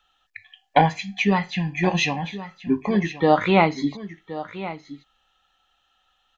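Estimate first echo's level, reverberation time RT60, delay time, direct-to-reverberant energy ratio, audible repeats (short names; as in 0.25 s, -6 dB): -14.5 dB, none, 1.072 s, none, 1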